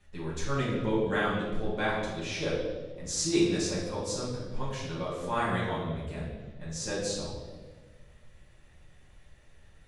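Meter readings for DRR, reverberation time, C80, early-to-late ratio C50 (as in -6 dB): -8.0 dB, 1.4 s, 3.5 dB, 1.0 dB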